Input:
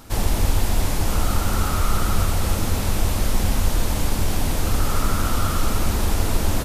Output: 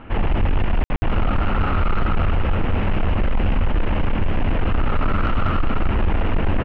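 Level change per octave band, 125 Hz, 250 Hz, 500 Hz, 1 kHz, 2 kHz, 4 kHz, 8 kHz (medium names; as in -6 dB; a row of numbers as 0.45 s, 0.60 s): +1.0 dB, +2.0 dB, +2.0 dB, +1.5 dB, +2.0 dB, -6.5 dB, under -35 dB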